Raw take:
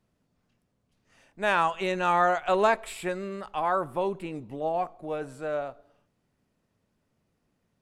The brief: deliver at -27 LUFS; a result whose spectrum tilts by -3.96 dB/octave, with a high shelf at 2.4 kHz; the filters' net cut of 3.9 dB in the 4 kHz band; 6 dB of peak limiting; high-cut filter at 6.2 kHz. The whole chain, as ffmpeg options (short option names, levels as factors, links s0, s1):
-af "lowpass=6200,highshelf=f=2400:g=3,equalizer=f=4000:t=o:g=-7.5,volume=1.41,alimiter=limit=0.211:level=0:latency=1"